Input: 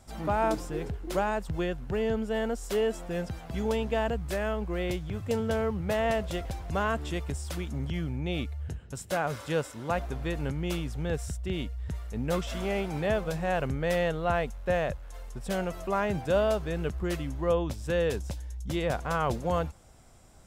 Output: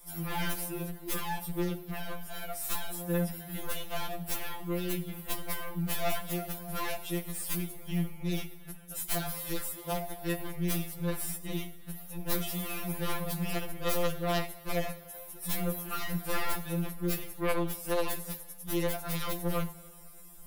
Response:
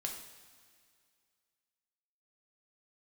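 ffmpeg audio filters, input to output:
-filter_complex "[0:a]equalizer=f=380:w=0.32:g=-5,aexciter=amount=12.9:drive=3.7:freq=10k,aeval=exprs='0.2*(cos(1*acos(clip(val(0)/0.2,-1,1)))-cos(1*PI/2))+0.0158*(cos(3*acos(clip(val(0)/0.2,-1,1)))-cos(3*PI/2))+0.0447*(cos(4*acos(clip(val(0)/0.2,-1,1)))-cos(4*PI/2))+0.0891*(cos(7*acos(clip(val(0)/0.2,-1,1)))-cos(7*PI/2))':c=same,asplit=2[a][b];[1:a]atrim=start_sample=2205,lowshelf=f=88:g=7.5[c];[b][c]afir=irnorm=-1:irlink=0,volume=-5dB[d];[a][d]amix=inputs=2:normalize=0,afftfilt=real='re*2.83*eq(mod(b,8),0)':imag='im*2.83*eq(mod(b,8),0)':win_size=2048:overlap=0.75,volume=-7dB"

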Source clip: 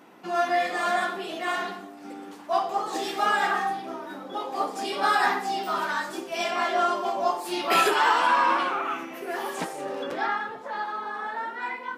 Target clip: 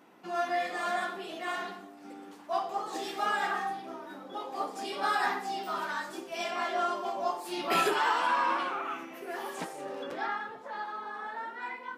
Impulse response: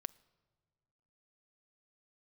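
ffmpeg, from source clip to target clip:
-filter_complex "[0:a]asettb=1/sr,asplit=3[a][b][c];[a]atrim=end=7.584[d];[b]atrim=start=7.58:end=7.99,asetpts=PTS-STARTPTS,afade=t=in:d=0.004:c=qsin,afade=t=out:st=0.406:d=0.004:c=qsin,lowshelf=f=210:g=10.5[e];[c]atrim=start=7.986[f];[d][e]acrossfade=d=0.004:c1=hsin:c2=qsin[g];[g][f]acrossfade=d=0.004:c1=qsin:c2=hsin,volume=-6.5dB"

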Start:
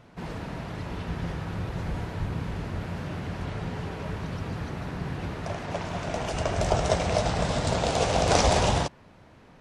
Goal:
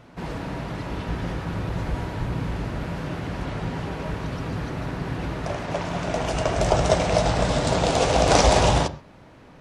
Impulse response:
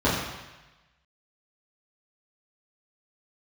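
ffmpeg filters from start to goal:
-filter_complex "[0:a]asplit=2[a][b];[1:a]atrim=start_sample=2205,atrim=end_sample=6174[c];[b][c]afir=irnorm=-1:irlink=0,volume=-28.5dB[d];[a][d]amix=inputs=2:normalize=0,volume=3.5dB"

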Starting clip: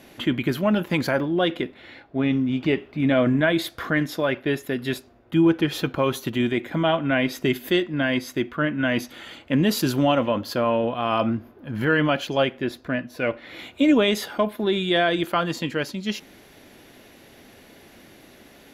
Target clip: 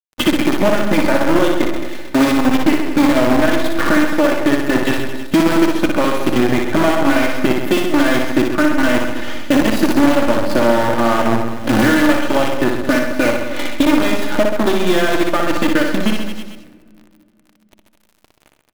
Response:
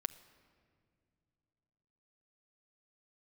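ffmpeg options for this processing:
-filter_complex "[0:a]agate=range=-33dB:threshold=-37dB:ratio=3:detection=peak,aecho=1:1:3.4:0.94,bandreject=f=66.54:t=h:w=4,bandreject=f=133.08:t=h:w=4,bandreject=f=199.62:t=h:w=4,bandreject=f=266.16:t=h:w=4,bandreject=f=332.7:t=h:w=4,bandreject=f=399.24:t=h:w=4,bandreject=f=465.78:t=h:w=4,bandreject=f=532.32:t=h:w=4,bandreject=f=598.86:t=h:w=4,bandreject=f=665.4:t=h:w=4,bandreject=f=731.94:t=h:w=4,bandreject=f=798.48:t=h:w=4,bandreject=f=865.02:t=h:w=4,bandreject=f=931.56:t=h:w=4,bandreject=f=998.1:t=h:w=4,bandreject=f=1.06464k:t=h:w=4,bandreject=f=1.13118k:t=h:w=4,bandreject=f=1.19772k:t=h:w=4,bandreject=f=1.26426k:t=h:w=4,bandreject=f=1.3308k:t=h:w=4,bandreject=f=1.39734k:t=h:w=4,bandreject=f=1.46388k:t=h:w=4,bandreject=f=1.53042k:t=h:w=4,bandreject=f=1.59696k:t=h:w=4,bandreject=f=1.6635k:t=h:w=4,bandreject=f=1.73004k:t=h:w=4,bandreject=f=1.79658k:t=h:w=4,bandreject=f=1.86312k:t=h:w=4,bandreject=f=1.92966k:t=h:w=4,bandreject=f=1.9962k:t=h:w=4,bandreject=f=2.06274k:t=h:w=4,bandreject=f=2.12928k:t=h:w=4,bandreject=f=2.19582k:t=h:w=4,bandreject=f=2.26236k:t=h:w=4,acompressor=threshold=-30dB:ratio=20,asoftclip=type=tanh:threshold=-19.5dB,acrusher=bits=6:dc=4:mix=0:aa=0.000001,aecho=1:1:60|132|218.4|322.1|446.5:0.631|0.398|0.251|0.158|0.1,asplit=2[a][b];[1:a]atrim=start_sample=2205,highshelf=f=3.4k:g=-10.5[c];[b][c]afir=irnorm=-1:irlink=0,volume=9.5dB[d];[a][d]amix=inputs=2:normalize=0,adynamicequalizer=threshold=0.0158:dfrequency=2500:dqfactor=0.7:tfrequency=2500:tqfactor=0.7:attack=5:release=100:ratio=0.375:range=3:mode=cutabove:tftype=highshelf,volume=6.5dB"

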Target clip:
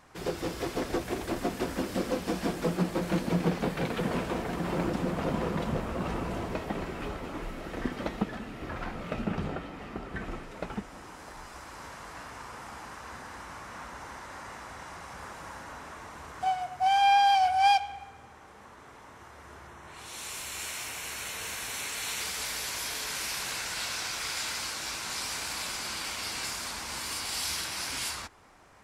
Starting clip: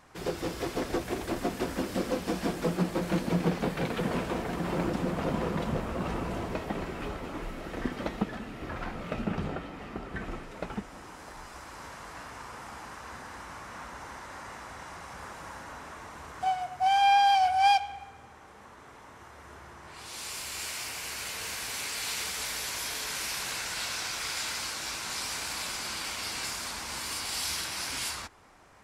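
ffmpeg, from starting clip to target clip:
-filter_complex "[0:a]asettb=1/sr,asplit=3[a][b][c];[a]atrim=end=19.674[d];[b]atrim=start=19.67:end=22.21,asetpts=PTS-STARTPTS,afade=t=in:d=0.004:c=qsin,afade=t=out:st=2.536:d=0.004:c=qsin,bandreject=f=4.8k:w=5.8[e];[c]atrim=start=22.206[f];[d][e]acrossfade=d=0.004:c1=hsin:c2=qsin[g];[g][f]acrossfade=d=0.004:c1=qsin:c2=hsin"

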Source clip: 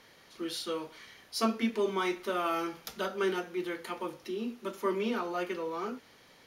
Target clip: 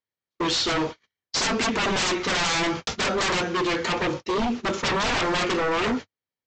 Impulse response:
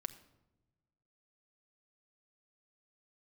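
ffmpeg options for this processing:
-af "agate=range=-56dB:threshold=-45dB:ratio=16:detection=peak,equalizer=f=97:t=o:w=0.92:g=8.5,aresample=16000,aeval=exprs='0.168*sin(PI/2*10*val(0)/0.168)':c=same,aresample=44100,volume=-5dB"

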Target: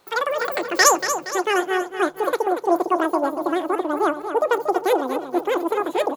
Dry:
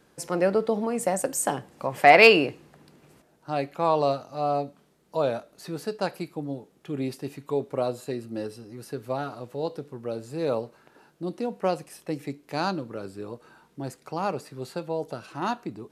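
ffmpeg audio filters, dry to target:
-af "aecho=1:1:605|1210|1815|2420|3025:0.335|0.161|0.0772|0.037|0.0178,asubboost=boost=9.5:cutoff=240,asetrate=113778,aresample=44100,volume=1dB"

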